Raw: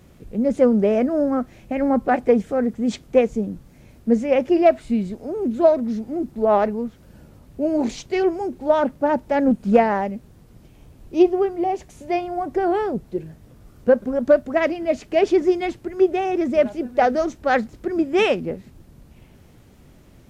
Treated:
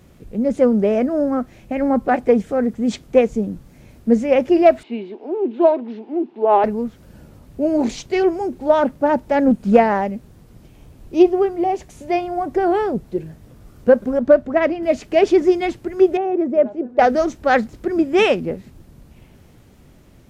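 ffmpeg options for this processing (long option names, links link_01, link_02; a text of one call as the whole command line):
ffmpeg -i in.wav -filter_complex "[0:a]asettb=1/sr,asplit=3[link_01][link_02][link_03];[link_01]atrim=end=4.834[link_04];[link_02]atrim=start=4.83:end=6.64,asetpts=PTS-STARTPTS,afade=type=in:duration=0.004:curve=qsin,afade=type=out:start_time=1.806:duration=0.004:curve=qsin,highpass=frequency=300:width=0.5412,highpass=frequency=300:width=1.3066,equalizer=frequency=370:width_type=q:width=4:gain=5,equalizer=frequency=550:width_type=q:width=4:gain=-8,equalizer=frequency=890:width_type=q:width=4:gain=6,equalizer=frequency=1300:width_type=q:width=4:gain=-6,equalizer=frequency=1900:width_type=q:width=4:gain=-4,equalizer=frequency=2800:width_type=q:width=4:gain=4,lowpass=frequency=3400:width=0.5412,lowpass=frequency=3400:width=1.3066[link_05];[link_03]atrim=start=6.636[link_06];[link_04][link_05]acrossfade=duration=0.004:curve1=hsin:curve2=qsin[link_07];[link_07][link_06]acrossfade=duration=0.004:curve1=qsin:curve2=hsin,asettb=1/sr,asplit=3[link_08][link_09][link_10];[link_08]atrim=end=14.194[link_11];[link_09]atrim=start=14.19:end=14.83,asetpts=PTS-STARTPTS,afade=type=in:duration=0.004:curve=qsin,afade=type=out:start_time=0.636:duration=0.004:curve=qsin,lowpass=frequency=2200:poles=1[link_12];[link_10]atrim=start=14.826[link_13];[link_11][link_12]acrossfade=duration=0.004:curve1=hsin:curve2=qsin[link_14];[link_14][link_13]acrossfade=duration=0.004:curve1=qsin:curve2=hsin,asettb=1/sr,asplit=3[link_15][link_16][link_17];[link_15]atrim=end=16.174[link_18];[link_16]atrim=start=16.17:end=16.99,asetpts=PTS-STARTPTS,afade=type=in:duration=0.004:curve=qsin,afade=type=out:start_time=0.816:duration=0.004:curve=qsin,bandpass=frequency=440:width_type=q:width=0.92[link_19];[link_17]atrim=start=16.986[link_20];[link_18][link_19]acrossfade=duration=0.004:curve1=hsin:curve2=qsin[link_21];[link_21][link_20]acrossfade=duration=0.004:curve1=qsin:curve2=hsin,dynaudnorm=framelen=750:gausssize=7:maxgain=4dB,volume=1dB" out.wav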